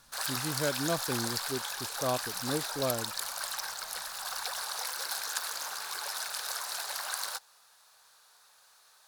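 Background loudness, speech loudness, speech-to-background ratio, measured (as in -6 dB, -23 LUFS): -34.0 LUFS, -36.0 LUFS, -2.0 dB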